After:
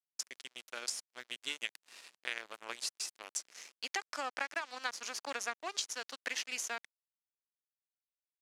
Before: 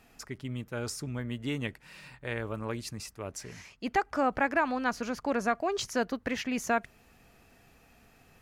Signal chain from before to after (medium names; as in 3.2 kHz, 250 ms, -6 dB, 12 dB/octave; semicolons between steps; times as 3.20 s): differentiator; compression 10:1, threshold -46 dBFS, peak gain reduction 12 dB; crossover distortion -55.5 dBFS; band-pass 310–7700 Hz; trim +16 dB